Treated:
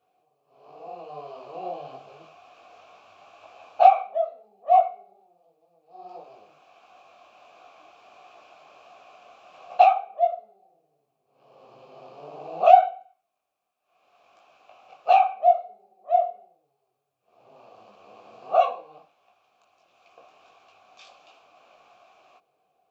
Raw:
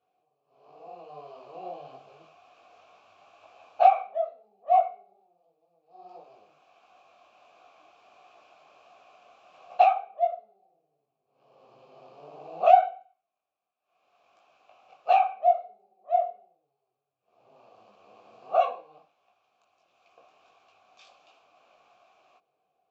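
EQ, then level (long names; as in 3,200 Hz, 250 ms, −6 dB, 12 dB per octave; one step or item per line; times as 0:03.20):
dynamic equaliser 370 Hz, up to −4 dB, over −33 dBFS, Q 0.82
dynamic equaliser 1,800 Hz, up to −6 dB, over −48 dBFS, Q 2
+5.5 dB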